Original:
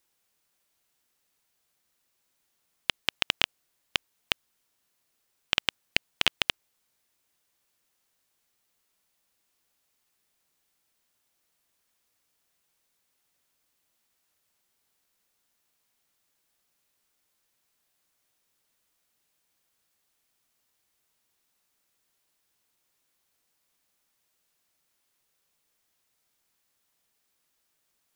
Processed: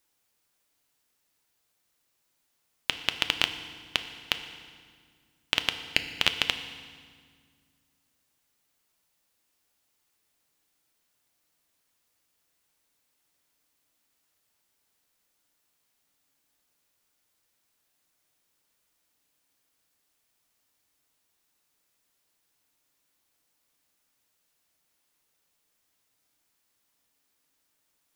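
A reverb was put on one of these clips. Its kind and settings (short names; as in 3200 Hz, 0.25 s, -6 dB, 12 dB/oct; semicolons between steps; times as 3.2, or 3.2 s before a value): FDN reverb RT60 1.8 s, low-frequency decay 1.55×, high-frequency decay 0.9×, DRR 8 dB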